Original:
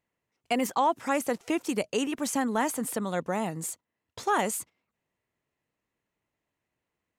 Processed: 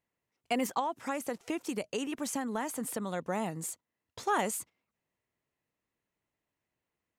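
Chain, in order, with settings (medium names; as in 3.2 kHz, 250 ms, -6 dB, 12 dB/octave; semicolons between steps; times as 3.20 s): 0.79–3.23 s: compression 4:1, threshold -27 dBFS, peak gain reduction 6.5 dB; trim -3.5 dB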